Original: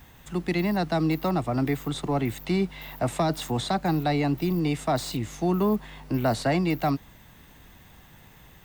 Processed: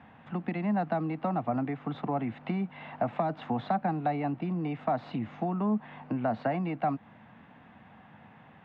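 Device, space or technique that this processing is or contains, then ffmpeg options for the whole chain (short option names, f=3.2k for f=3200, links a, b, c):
bass amplifier: -af "acompressor=threshold=-28dB:ratio=4,highpass=f=170:p=1,highpass=f=84:w=0.5412,highpass=f=84:w=1.3066,equalizer=f=220:t=q:w=4:g=7,equalizer=f=380:t=q:w=4:g=-8,equalizer=f=750:t=q:w=4:g=5,equalizer=f=2k:t=q:w=4:g=-4,lowpass=f=2.4k:w=0.5412,lowpass=f=2.4k:w=1.3066,volume=1dB"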